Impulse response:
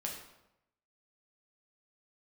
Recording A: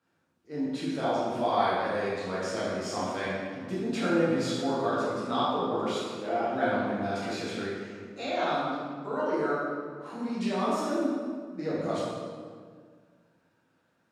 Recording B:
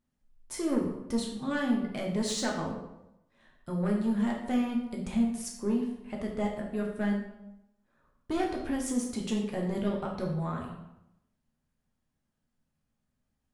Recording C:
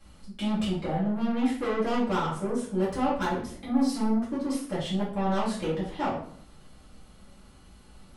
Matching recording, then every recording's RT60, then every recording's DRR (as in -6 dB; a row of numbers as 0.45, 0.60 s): B; 1.9, 0.90, 0.60 s; -9.5, -1.5, -10.0 dB